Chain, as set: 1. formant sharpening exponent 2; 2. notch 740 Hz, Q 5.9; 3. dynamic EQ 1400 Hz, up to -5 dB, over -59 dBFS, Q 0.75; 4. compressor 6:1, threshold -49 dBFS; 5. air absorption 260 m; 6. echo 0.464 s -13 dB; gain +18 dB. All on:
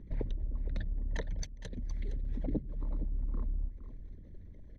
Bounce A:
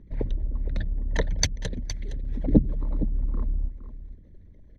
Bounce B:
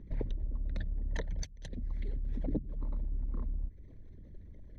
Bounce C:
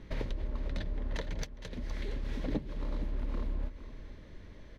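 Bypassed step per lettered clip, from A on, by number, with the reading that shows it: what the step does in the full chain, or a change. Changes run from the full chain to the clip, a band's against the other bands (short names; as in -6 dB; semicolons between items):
4, mean gain reduction 8.5 dB; 6, momentary loudness spread change +3 LU; 1, 125 Hz band -5.5 dB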